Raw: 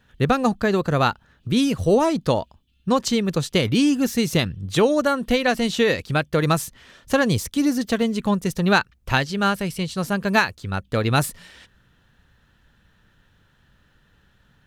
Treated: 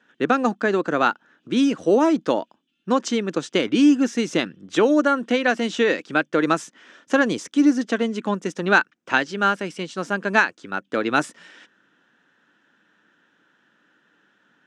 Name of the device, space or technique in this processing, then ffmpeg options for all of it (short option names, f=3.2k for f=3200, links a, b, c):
television speaker: -af "highpass=f=220:w=0.5412,highpass=f=220:w=1.3066,equalizer=f=310:t=q:w=4:g=7,equalizer=f=1.5k:t=q:w=4:g=6,equalizer=f=4.3k:t=q:w=4:g=-8,lowpass=f=7.2k:w=0.5412,lowpass=f=7.2k:w=1.3066,volume=-1dB"